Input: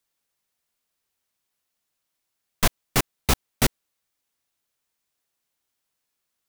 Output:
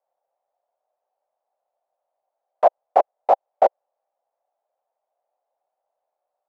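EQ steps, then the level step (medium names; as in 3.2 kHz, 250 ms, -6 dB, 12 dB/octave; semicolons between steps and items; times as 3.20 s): resonant high-pass 570 Hz, resonance Q 4.9; resonant low-pass 760 Hz, resonance Q 4.9; tilt EQ +3 dB/octave; -1.0 dB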